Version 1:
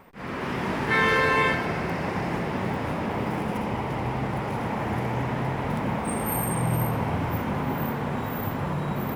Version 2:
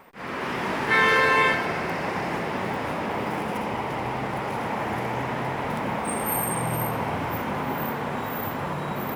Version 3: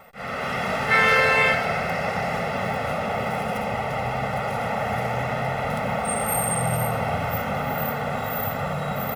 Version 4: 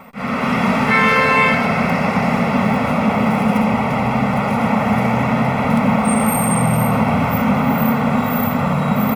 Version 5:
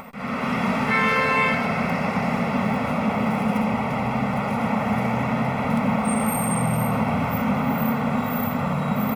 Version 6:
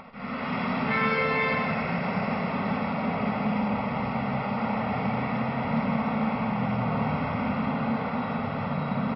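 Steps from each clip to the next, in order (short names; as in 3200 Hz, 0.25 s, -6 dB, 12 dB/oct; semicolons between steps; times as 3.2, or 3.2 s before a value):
low shelf 230 Hz -11 dB; gain +3 dB
comb 1.5 ms, depth 98%
in parallel at +3 dB: limiter -16 dBFS, peak gain reduction 9.5 dB; on the sum: small resonant body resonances 230/1000/2300 Hz, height 16 dB, ringing for 35 ms; gain -3.5 dB
upward compressor, threshold -26 dBFS; gain -6.5 dB
echo 0.164 s -6.5 dB; reverb RT60 0.40 s, pre-delay 40 ms, DRR 6 dB; gain -6 dB; MP3 32 kbps 12000 Hz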